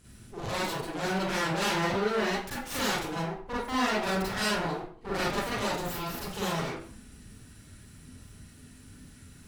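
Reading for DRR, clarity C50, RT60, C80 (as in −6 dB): −8.0 dB, −1.5 dB, 0.50 s, 5.5 dB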